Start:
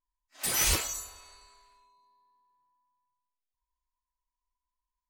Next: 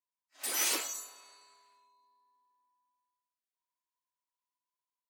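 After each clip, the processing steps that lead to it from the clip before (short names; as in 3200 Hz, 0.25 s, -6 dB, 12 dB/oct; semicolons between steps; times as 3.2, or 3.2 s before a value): steep high-pass 240 Hz 72 dB/oct; AGC gain up to 3.5 dB; gain -7 dB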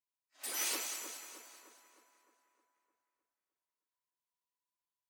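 split-band echo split 1900 Hz, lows 0.307 s, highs 0.209 s, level -7.5 dB; gain -5.5 dB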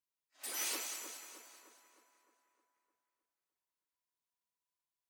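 hard clip -28.5 dBFS, distortion -25 dB; gain -2 dB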